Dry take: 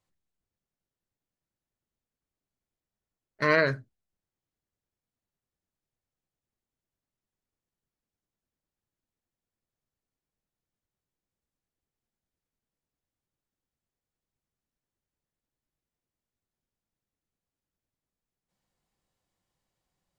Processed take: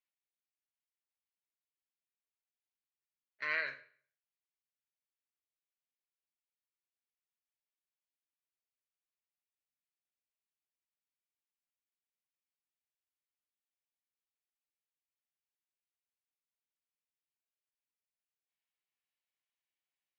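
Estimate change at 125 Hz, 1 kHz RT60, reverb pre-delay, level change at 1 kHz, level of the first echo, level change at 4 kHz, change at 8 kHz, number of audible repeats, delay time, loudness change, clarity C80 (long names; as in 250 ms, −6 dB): below −30 dB, 0.45 s, 24 ms, −16.0 dB, no echo audible, −10.5 dB, can't be measured, no echo audible, no echo audible, −11.5 dB, 17.0 dB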